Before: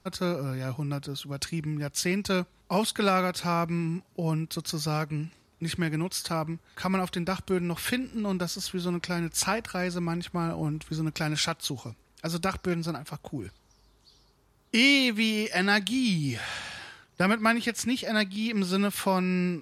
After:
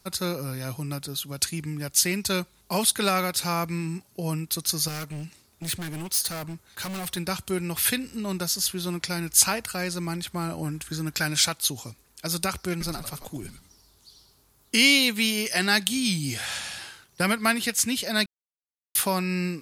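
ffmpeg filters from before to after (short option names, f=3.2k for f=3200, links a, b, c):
-filter_complex "[0:a]asettb=1/sr,asplit=3[a][b][c];[a]atrim=end=4.884[d];[b]atrim=start=4.88:end=7.17,asetpts=PTS-STARTPTS,afade=t=in:d=0.004:c=qsin,afade=t=out:st=2.286:d=0.004:c=qsin,asoftclip=type=hard:threshold=-30.5dB[e];[c]atrim=start=7.166[f];[d][e]acrossfade=d=0.004:c1=hsin:c2=qsin[g];[g][f]acrossfade=d=0.004:c1=qsin:c2=hsin,asettb=1/sr,asplit=3[h][i][j];[h]atrim=end=10.644[k];[i]atrim=start=10.64:end=11.26,asetpts=PTS-STARTPTS,afade=t=in:d=0.004:c=qsin,afade=t=out:st=0.616:d=0.004:c=qsin,equalizer=f=1.6k:t=o:w=0.21:g=12.5[l];[j]atrim=start=11.256[m];[k][l]acrossfade=d=0.004:c1=hsin:c2=qsin[n];[n][m]acrossfade=d=0.004:c1=qsin:c2=hsin,asettb=1/sr,asplit=3[o][p][q];[o]atrim=end=12.714[r];[p]atrim=start=12.71:end=14.77,asetpts=PTS-STARTPTS,afade=t=in:d=0.004:c=qsin,afade=t=out:st=2.056:d=0.004:c=qsin,asplit=5[s][t][u][v][w];[t]adelay=94,afreqshift=-140,volume=-8dB[x];[u]adelay=188,afreqshift=-280,volume=-18.5dB[y];[v]adelay=282,afreqshift=-420,volume=-28.9dB[z];[w]adelay=376,afreqshift=-560,volume=-39.4dB[aa];[s][x][y][z][aa]amix=inputs=5:normalize=0,atrim=end_sample=90846[ab];[q]atrim=start=14.766[ac];[r][ab]acrossfade=d=0.004:c1=hsin:c2=qsin[ad];[ad][ac]acrossfade=d=0.004:c1=qsin:c2=hsin,asplit=3[ae][af][ag];[ae]atrim=end=18.26,asetpts=PTS-STARTPTS,afade=t=out:st=18.256:d=0.004:c=hsin[ah];[af]atrim=start=18.26:end=18.95,asetpts=PTS-STARTPTS,volume=0[ai];[ag]atrim=start=18.95,asetpts=PTS-STARTPTS,afade=t=in:d=0.004:c=hsin[aj];[ah][ai][aj]concat=n=3:v=0:a=1,aemphasis=mode=production:type=75kf,volume=-1dB"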